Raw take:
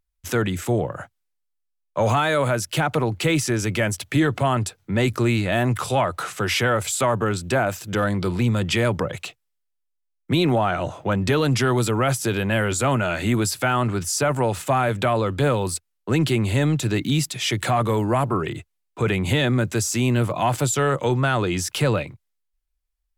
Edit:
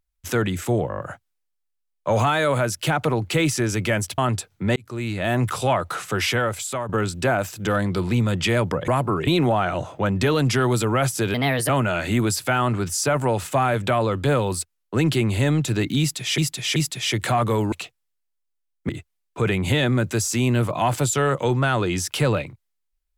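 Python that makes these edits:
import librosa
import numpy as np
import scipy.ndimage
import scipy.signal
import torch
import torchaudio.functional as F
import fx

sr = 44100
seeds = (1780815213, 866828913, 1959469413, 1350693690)

y = fx.edit(x, sr, fx.stutter(start_s=0.89, slice_s=0.02, count=6),
    fx.cut(start_s=4.08, length_s=0.38),
    fx.fade_in_span(start_s=5.04, length_s=0.63),
    fx.fade_out_to(start_s=6.5, length_s=0.67, floor_db=-9.5),
    fx.swap(start_s=9.16, length_s=1.17, other_s=18.11, other_length_s=0.39),
    fx.speed_span(start_s=12.4, length_s=0.44, speed=1.25),
    fx.repeat(start_s=17.15, length_s=0.38, count=3), tone=tone)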